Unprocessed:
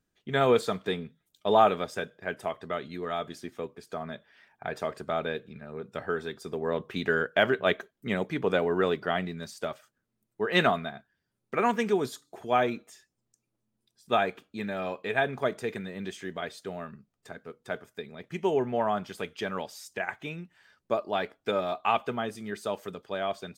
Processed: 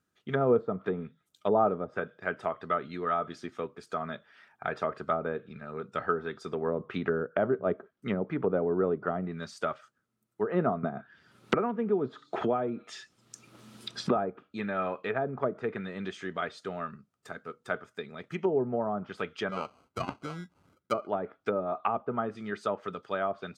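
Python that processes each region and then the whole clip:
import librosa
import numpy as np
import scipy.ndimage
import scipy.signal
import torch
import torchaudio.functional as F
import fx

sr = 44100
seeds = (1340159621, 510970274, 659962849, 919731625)

y = fx.chain(x, sr, fx.peak_eq(hz=3500.0, db=9.0, octaves=1.6),
    fx.band_squash(depth_pct=100), at=(10.83, 14.16))
y = fx.chain(y, sr, fx.air_absorb(metres=420.0),
    fx.sample_hold(seeds[0], rate_hz=1800.0, jitter_pct=0), at=(19.49, 21.07))
y = fx.env_lowpass_down(y, sr, base_hz=580.0, full_db=-24.5)
y = scipy.signal.sosfilt(scipy.signal.butter(2, 73.0, 'highpass', fs=sr, output='sos'), y)
y = fx.peak_eq(y, sr, hz=1300.0, db=10.0, octaves=0.33)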